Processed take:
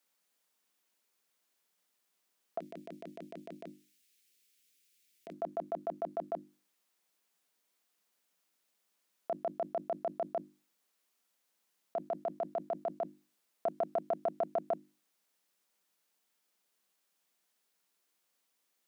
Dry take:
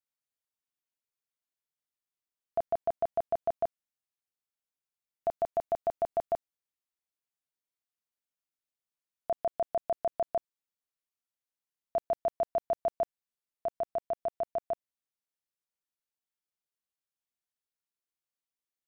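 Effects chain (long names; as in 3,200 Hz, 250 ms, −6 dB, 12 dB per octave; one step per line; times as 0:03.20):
elliptic high-pass filter 170 Hz
mains-hum notches 50/100/150/200/250/300/350 Hz
compressor whose output falls as the input rises −38 dBFS, ratio −1
0:02.59–0:05.33: drawn EQ curve 430 Hz 0 dB, 830 Hz −20 dB, 2,300 Hz +7 dB
highs frequency-modulated by the lows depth 0.13 ms
level +5.5 dB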